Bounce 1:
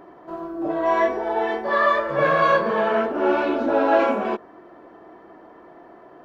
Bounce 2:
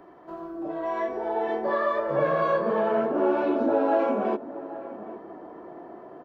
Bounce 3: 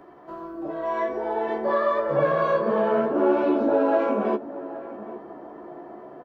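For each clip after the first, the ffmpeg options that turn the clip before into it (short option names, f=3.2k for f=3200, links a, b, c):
-filter_complex "[0:a]acompressor=threshold=-30dB:ratio=2,asplit=2[a][b];[b]adelay=816.3,volume=-15dB,highshelf=f=4k:g=-18.4[c];[a][c]amix=inputs=2:normalize=0,acrossover=split=100|970[d][e][f];[e]dynaudnorm=f=270:g=9:m=9.5dB[g];[d][g][f]amix=inputs=3:normalize=0,volume=-4.5dB"
-filter_complex "[0:a]asplit=2[a][b];[b]adelay=14,volume=-7dB[c];[a][c]amix=inputs=2:normalize=0,volume=1dB"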